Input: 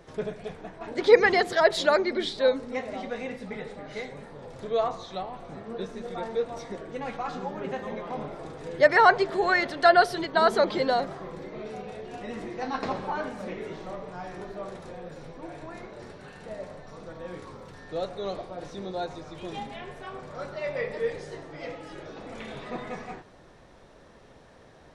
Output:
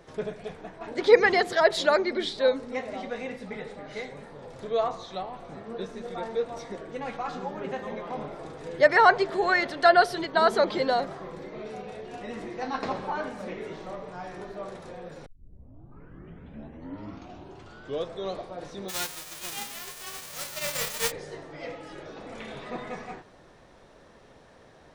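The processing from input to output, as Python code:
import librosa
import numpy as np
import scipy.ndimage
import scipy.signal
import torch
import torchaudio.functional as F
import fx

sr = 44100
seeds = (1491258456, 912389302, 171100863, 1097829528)

y = fx.envelope_flatten(x, sr, power=0.1, at=(18.88, 21.1), fade=0.02)
y = fx.edit(y, sr, fx.tape_start(start_s=15.26, length_s=3.08), tone=tone)
y = fx.low_shelf(y, sr, hz=190.0, db=-3.0)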